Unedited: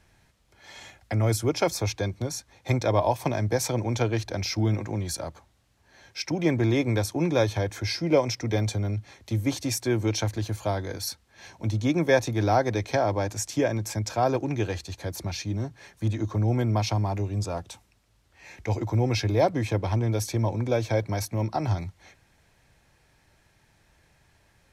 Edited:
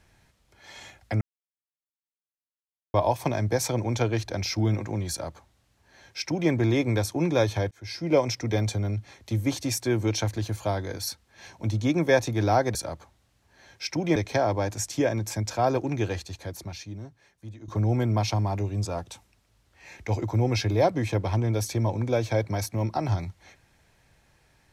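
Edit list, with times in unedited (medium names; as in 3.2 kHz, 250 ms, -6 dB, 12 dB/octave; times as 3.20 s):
1.21–2.94 s: mute
5.10–6.51 s: copy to 12.75 s
7.71–8.17 s: fade in linear
14.75–16.27 s: fade out quadratic, to -15.5 dB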